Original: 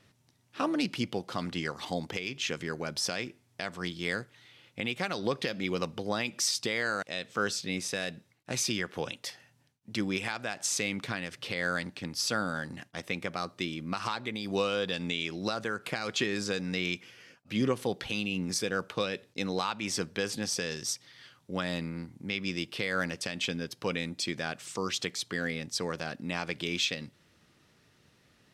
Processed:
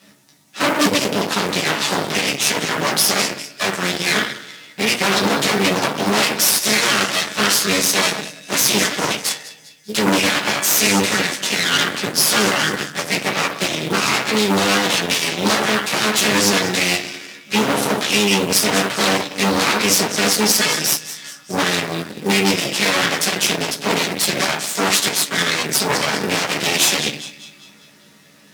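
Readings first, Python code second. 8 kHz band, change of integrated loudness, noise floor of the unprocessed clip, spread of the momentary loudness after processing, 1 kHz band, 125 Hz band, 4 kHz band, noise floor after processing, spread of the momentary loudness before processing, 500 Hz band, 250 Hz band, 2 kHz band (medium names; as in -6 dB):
+18.5 dB, +16.0 dB, -67 dBFS, 7 LU, +17.0 dB, +11.0 dB, +17.0 dB, -47 dBFS, 7 LU, +13.5 dB, +13.0 dB, +15.5 dB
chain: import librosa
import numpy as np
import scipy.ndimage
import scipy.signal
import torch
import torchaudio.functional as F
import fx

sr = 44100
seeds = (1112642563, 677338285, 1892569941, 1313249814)

y = fx.notch(x, sr, hz=520.0, q=17.0)
y = fx.echo_split(y, sr, split_hz=1900.0, low_ms=109, high_ms=199, feedback_pct=52, wet_db=-15.5)
y = 10.0 ** (-34.0 / 20.0) * np.tanh(y / 10.0 ** (-34.0 / 20.0))
y = fx.doubler(y, sr, ms=14.0, db=-3.5)
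y = fx.rev_fdn(y, sr, rt60_s=0.48, lf_ratio=1.1, hf_ratio=0.45, size_ms=31.0, drr_db=-5.5)
y = fx.cheby_harmonics(y, sr, harmonics=(8,), levels_db=(-7,), full_scale_db=-13.5)
y = fx.quant_companded(y, sr, bits=6)
y = scipy.signal.sosfilt(scipy.signal.butter(4, 130.0, 'highpass', fs=sr, output='sos'), y)
y = fx.peak_eq(y, sr, hz=8600.0, db=8.0, octaves=3.0)
y = F.gain(torch.from_numpy(y), 4.5).numpy()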